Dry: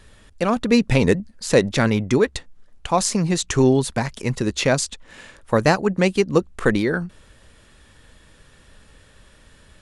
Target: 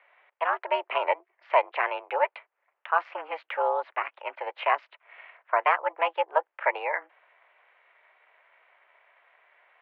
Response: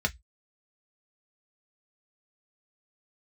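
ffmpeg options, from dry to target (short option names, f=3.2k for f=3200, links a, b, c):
-af "highpass=f=410:t=q:w=0.5412,highpass=f=410:t=q:w=1.307,lowpass=f=2.3k:t=q:w=0.5176,lowpass=f=2.3k:t=q:w=0.7071,lowpass=f=2.3k:t=q:w=1.932,afreqshift=300,aeval=exprs='val(0)*sin(2*PI*160*n/s)':c=same,volume=-1dB"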